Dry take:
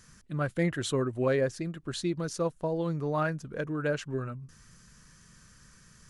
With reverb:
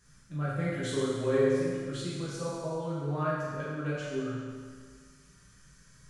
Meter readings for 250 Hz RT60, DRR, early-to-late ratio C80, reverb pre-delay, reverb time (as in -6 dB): 1.8 s, -9.0 dB, 0.0 dB, 7 ms, 1.8 s